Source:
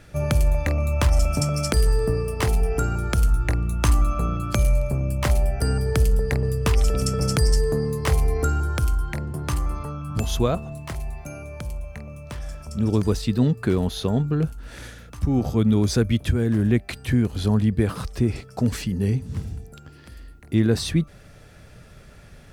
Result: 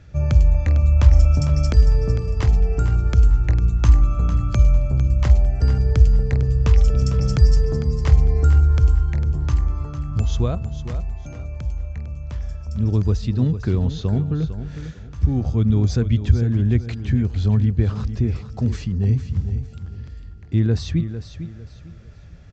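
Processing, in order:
parametric band 73 Hz +14.5 dB 2 octaves
on a send: repeating echo 452 ms, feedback 29%, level −11 dB
on the sum: downsampling to 16,000 Hz
level −6 dB

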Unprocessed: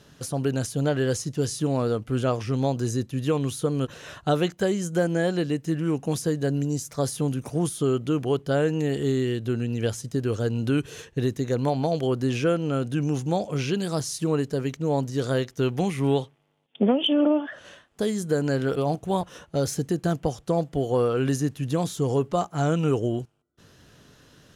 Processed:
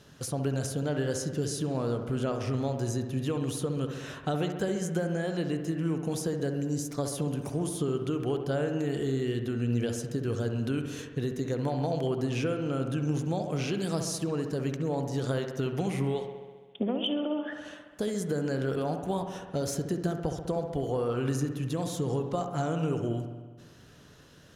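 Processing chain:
downward compressor, threshold −25 dBFS, peak gain reduction 9.5 dB
delay with a low-pass on its return 67 ms, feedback 72%, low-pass 2,200 Hz, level −7.5 dB
level −2 dB

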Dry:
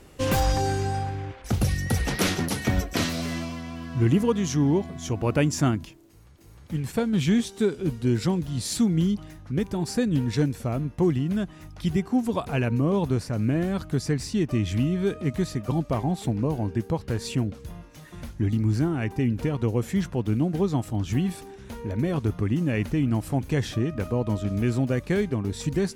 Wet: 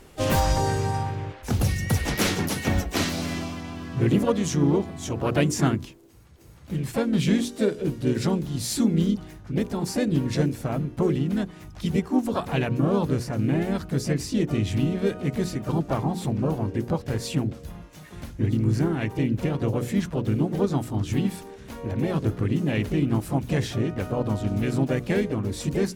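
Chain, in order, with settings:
mains-hum notches 60/120/180/240/300/360/420/480 Hz
pitch-shifted copies added +3 semitones −6 dB, +7 semitones −14 dB

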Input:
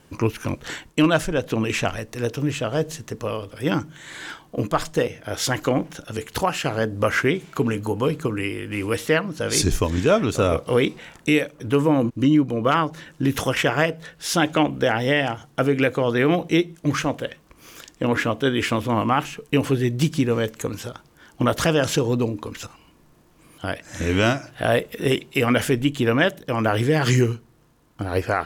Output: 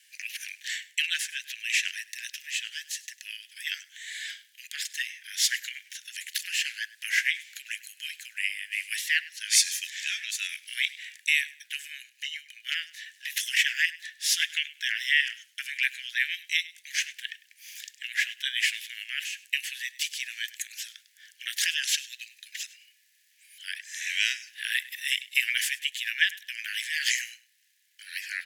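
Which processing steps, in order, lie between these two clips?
Butterworth high-pass 1,700 Hz 96 dB per octave
on a send: repeating echo 101 ms, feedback 22%, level −19.5 dB
on the sum: level +1.5 dB

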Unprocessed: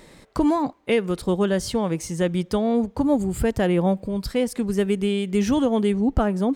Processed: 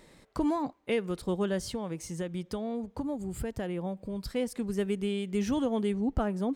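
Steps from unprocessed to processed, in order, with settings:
0:01.66–0:04.25: downward compressor, threshold −22 dBFS, peak gain reduction 7.5 dB
level −8.5 dB

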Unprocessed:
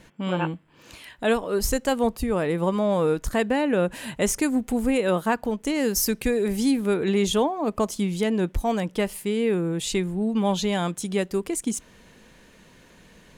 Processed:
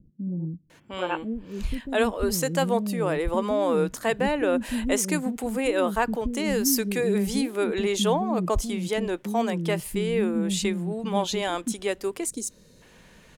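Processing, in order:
gain on a spectral selection 0:11.58–0:12.11, 620–3,600 Hz −12 dB
multiband delay without the direct sound lows, highs 700 ms, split 280 Hz

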